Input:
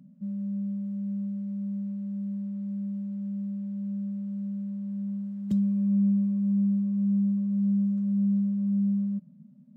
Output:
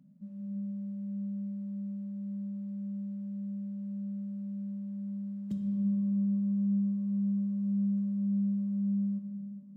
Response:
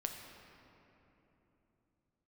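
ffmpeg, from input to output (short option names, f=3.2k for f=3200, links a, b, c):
-filter_complex "[1:a]atrim=start_sample=2205[a];[0:a][a]afir=irnorm=-1:irlink=0,volume=-6dB"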